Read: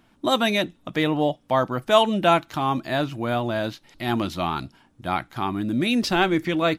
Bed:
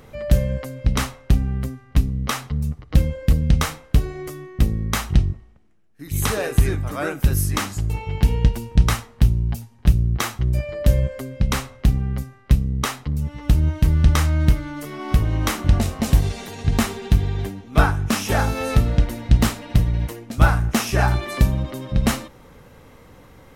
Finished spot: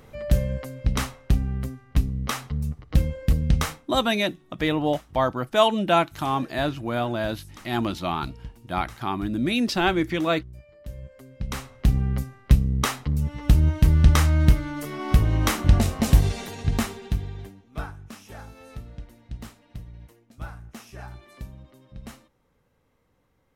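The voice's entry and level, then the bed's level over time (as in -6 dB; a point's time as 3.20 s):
3.65 s, -1.5 dB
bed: 3.71 s -4 dB
3.99 s -23 dB
10.85 s -23 dB
11.99 s -0.5 dB
16.40 s -0.5 dB
18.19 s -22 dB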